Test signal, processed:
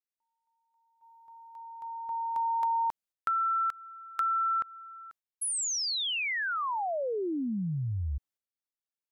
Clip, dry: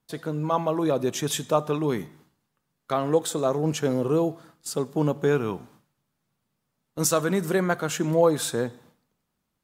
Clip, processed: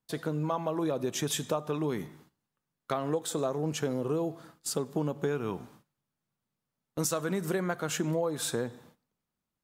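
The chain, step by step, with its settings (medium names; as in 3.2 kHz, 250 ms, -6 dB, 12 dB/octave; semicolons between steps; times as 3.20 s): compression 6:1, threshold -27 dBFS; gate -59 dBFS, range -9 dB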